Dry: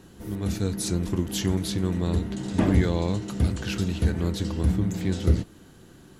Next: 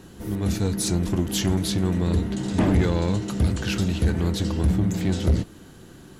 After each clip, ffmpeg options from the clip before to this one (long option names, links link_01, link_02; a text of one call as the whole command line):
ffmpeg -i in.wav -af "asoftclip=type=tanh:threshold=-17.5dB,volume=4.5dB" out.wav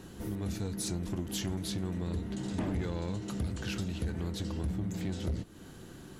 ffmpeg -i in.wav -af "acompressor=threshold=-33dB:ratio=2.5,volume=-3dB" out.wav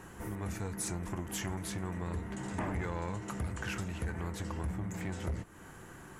ffmpeg -i in.wav -af "equalizer=frequency=250:width_type=o:width=1:gain=-4,equalizer=frequency=1000:width_type=o:width=1:gain=8,equalizer=frequency=2000:width_type=o:width=1:gain=8,equalizer=frequency=4000:width_type=o:width=1:gain=-10,equalizer=frequency=8000:width_type=o:width=1:gain=5,volume=-2dB" out.wav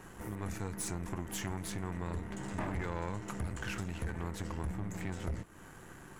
ffmpeg -i in.wav -af "aeval=exprs='if(lt(val(0),0),0.447*val(0),val(0))':channel_layout=same,volume=1dB" out.wav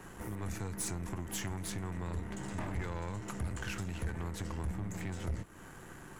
ffmpeg -i in.wav -filter_complex "[0:a]acrossover=split=130|3000[link_01][link_02][link_03];[link_02]acompressor=threshold=-43dB:ratio=2[link_04];[link_01][link_04][link_03]amix=inputs=3:normalize=0,volume=1.5dB" out.wav